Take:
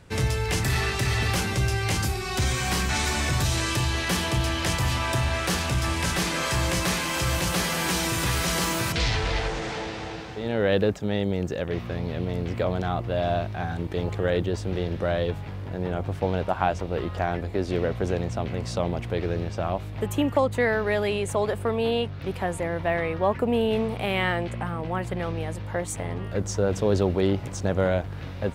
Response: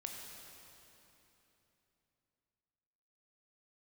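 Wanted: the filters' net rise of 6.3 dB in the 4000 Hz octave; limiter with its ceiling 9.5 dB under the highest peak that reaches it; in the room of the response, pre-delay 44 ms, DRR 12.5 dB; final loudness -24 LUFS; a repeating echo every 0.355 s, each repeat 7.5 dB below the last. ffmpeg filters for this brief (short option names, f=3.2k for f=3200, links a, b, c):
-filter_complex "[0:a]equalizer=f=4k:t=o:g=8,alimiter=limit=-15.5dB:level=0:latency=1,aecho=1:1:355|710|1065|1420|1775:0.422|0.177|0.0744|0.0312|0.0131,asplit=2[a][b];[1:a]atrim=start_sample=2205,adelay=44[c];[b][c]afir=irnorm=-1:irlink=0,volume=-10.5dB[d];[a][d]amix=inputs=2:normalize=0,volume=1dB"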